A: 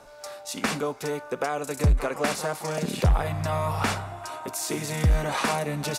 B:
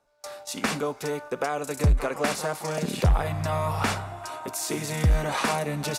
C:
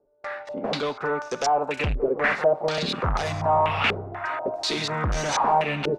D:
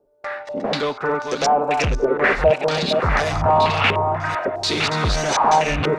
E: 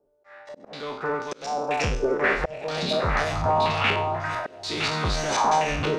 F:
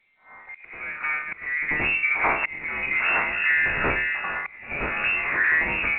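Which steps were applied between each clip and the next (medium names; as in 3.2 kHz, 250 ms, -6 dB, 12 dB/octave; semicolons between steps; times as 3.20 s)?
gate with hold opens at -30 dBFS
bass shelf 360 Hz -7 dB; in parallel at -11 dB: sine folder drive 12 dB, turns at -14 dBFS; on the sum: step-sequenced low-pass 4.1 Hz 410–5900 Hz; trim -3 dB
chunks repeated in reverse 544 ms, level -5.5 dB; trim +4.5 dB
spectral sustain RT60 0.43 s; slow attack 383 ms; feedback echo behind a high-pass 98 ms, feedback 83%, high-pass 4.7 kHz, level -21 dB; trim -6.5 dB
pre-echo 88 ms -13 dB; frequency inversion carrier 2.7 kHz; A-law 64 kbps 8 kHz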